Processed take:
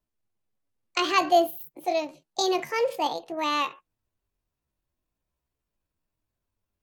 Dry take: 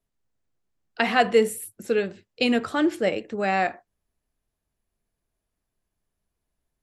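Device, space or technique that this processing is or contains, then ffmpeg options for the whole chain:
chipmunk voice: -filter_complex "[0:a]asplit=3[a][b][c];[a]afade=t=out:st=1.01:d=0.02[d];[b]lowshelf=f=370:g=3.5,afade=t=in:st=1.01:d=0.02,afade=t=out:st=1.48:d=0.02[e];[c]afade=t=in:st=1.48:d=0.02[f];[d][e][f]amix=inputs=3:normalize=0,asetrate=68011,aresample=44100,atempo=0.64842,volume=-3dB"

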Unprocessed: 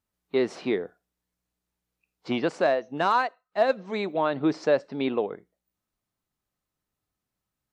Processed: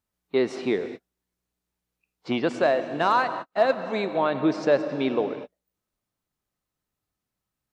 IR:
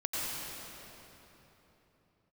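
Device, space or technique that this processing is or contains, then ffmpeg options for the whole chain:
keyed gated reverb: -filter_complex "[0:a]asplit=3[a][b][c];[1:a]atrim=start_sample=2205[d];[b][d]afir=irnorm=-1:irlink=0[e];[c]apad=whole_len=340549[f];[e][f]sidechaingate=range=-56dB:threshold=-45dB:ratio=16:detection=peak,volume=-14dB[g];[a][g]amix=inputs=2:normalize=0"

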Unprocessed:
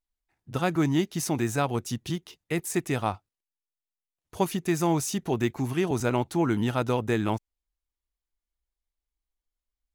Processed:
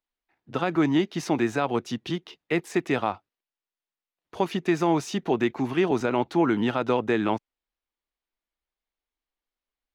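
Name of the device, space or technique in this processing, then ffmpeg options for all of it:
DJ mixer with the lows and highs turned down: -filter_complex "[0:a]acrossover=split=190 4600:gain=0.178 1 0.0891[a][b][c];[a][b][c]amix=inputs=3:normalize=0,alimiter=limit=-17dB:level=0:latency=1:release=83,volume=5dB"

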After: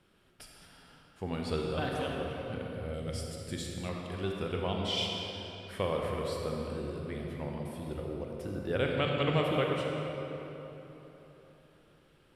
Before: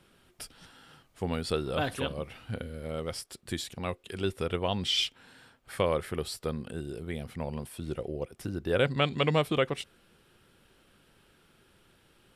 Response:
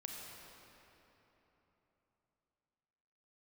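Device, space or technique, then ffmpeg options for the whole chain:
swimming-pool hall: -filter_complex "[1:a]atrim=start_sample=2205[a];[0:a][a]afir=irnorm=-1:irlink=0,highshelf=f=5.5k:g=-6,asettb=1/sr,asplit=3[b][c][d];[b]atrim=end=2.934[e];[c]atrim=start=2.93:end=3.89,asetpts=PTS-STARTPTS,afade=t=in:d=0.004:c=qsin,afade=t=out:st=0.956:d=0.004:c=qsin,equalizer=f=125:t=o:w=1:g=5,equalizer=f=1k:t=o:w=1:g=-7,equalizer=f=8k:t=o:w=1:g=6[f];[d]atrim=start=3.886[g];[e][f]acrossfade=d=0.004:c1=hsin:c2=qsin[h];[h][g]acrossfade=d=0.004:c1=qsin:c2=hsin"

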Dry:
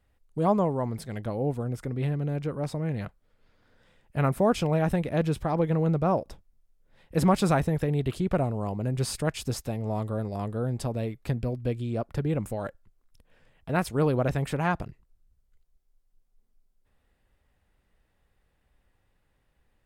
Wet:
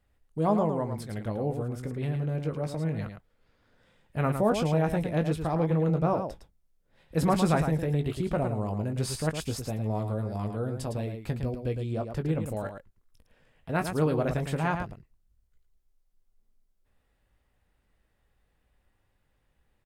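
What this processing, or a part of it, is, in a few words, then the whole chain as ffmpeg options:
slapback doubling: -filter_complex "[0:a]asplit=3[a][b][c];[b]adelay=19,volume=-9dB[d];[c]adelay=109,volume=-7dB[e];[a][d][e]amix=inputs=3:normalize=0,volume=-2.5dB"

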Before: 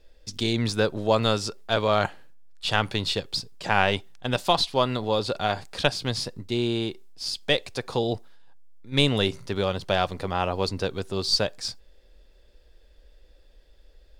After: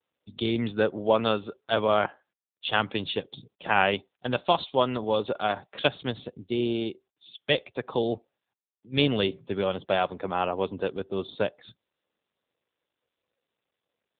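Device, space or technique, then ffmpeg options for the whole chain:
mobile call with aggressive noise cancelling: -af "adynamicequalizer=threshold=0.00708:dfrequency=130:dqfactor=1.8:tfrequency=130:tqfactor=1.8:attack=5:release=100:ratio=0.375:range=3.5:mode=cutabove:tftype=bell,highpass=130,afftdn=nr=30:nf=-45" -ar 8000 -c:a libopencore_amrnb -b:a 7950

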